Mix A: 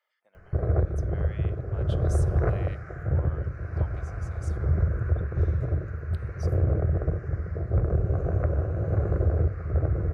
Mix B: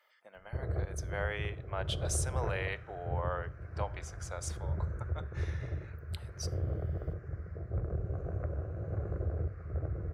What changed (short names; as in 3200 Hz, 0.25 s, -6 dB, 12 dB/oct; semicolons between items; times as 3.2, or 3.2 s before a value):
speech +10.5 dB; background -11.0 dB